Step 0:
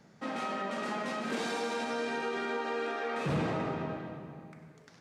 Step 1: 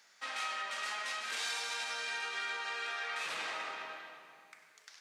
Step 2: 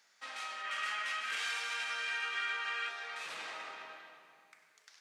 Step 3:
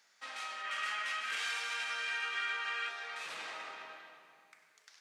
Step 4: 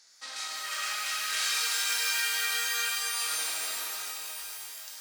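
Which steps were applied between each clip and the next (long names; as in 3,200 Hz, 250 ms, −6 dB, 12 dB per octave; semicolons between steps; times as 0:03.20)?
Bessel high-pass filter 2,300 Hz, order 2; in parallel at +0.5 dB: speech leveller within 3 dB
gain on a spectral selection 0:00.64–0:02.88, 1,100–3,400 Hz +7 dB; level −4.5 dB
no processing that can be heard
flat-topped bell 6,500 Hz +12.5 dB; reverb with rising layers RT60 4 s, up +12 semitones, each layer −2 dB, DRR 0 dB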